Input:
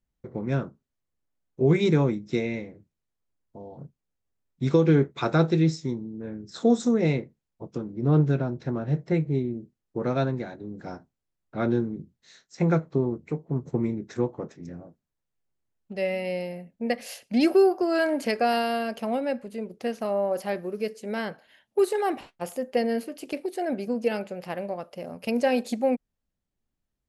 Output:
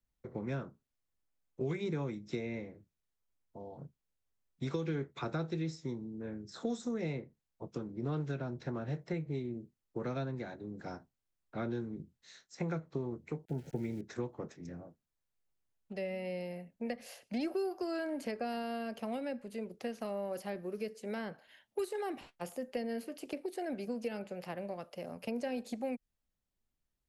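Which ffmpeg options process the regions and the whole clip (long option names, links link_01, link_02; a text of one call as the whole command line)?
ffmpeg -i in.wav -filter_complex "[0:a]asettb=1/sr,asplit=3[link_01][link_02][link_03];[link_01]atrim=end=13.454[link_04];[link_02]atrim=start=13.45:end=14.01,asetpts=PTS-STARTPTS,afade=type=in:duration=0.004:curve=qsin,afade=type=out:start_time=0.556:duration=0.004:curve=qsin,lowshelf=frequency=240:gain=3.5,aeval=exprs='val(0)*gte(abs(val(0)),0.00355)':channel_layout=same,asuperstop=centerf=1100:order=8:qfactor=2.8[link_05];[link_03]atrim=start=14.006[link_06];[link_04][link_05]acrossfade=duration=0.004:curve1=hsin:curve2=qsin[link_07];[link_07][link_06]acrossfade=duration=0.004:curve1=qsin:curve2=hsin,equalizer=frequency=200:width=0.39:gain=-4,acrossover=split=110|380|1600[link_08][link_09][link_10][link_11];[link_08]acompressor=threshold=-46dB:ratio=4[link_12];[link_09]acompressor=threshold=-36dB:ratio=4[link_13];[link_10]acompressor=threshold=-40dB:ratio=4[link_14];[link_11]acompressor=threshold=-49dB:ratio=4[link_15];[link_12][link_13][link_14][link_15]amix=inputs=4:normalize=0,volume=-2.5dB" out.wav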